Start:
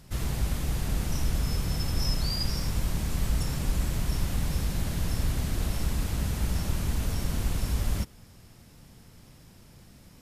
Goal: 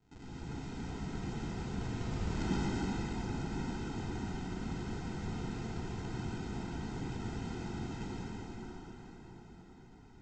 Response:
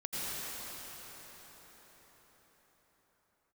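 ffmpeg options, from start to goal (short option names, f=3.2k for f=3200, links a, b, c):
-filter_complex "[0:a]lowpass=f=1.1k:p=1,aderivative,aresample=16000,acrusher=samples=28:mix=1:aa=0.000001,aresample=44100[a];[1:a]atrim=start_sample=2205[b];[a][b]afir=irnorm=-1:irlink=0,volume=13dB"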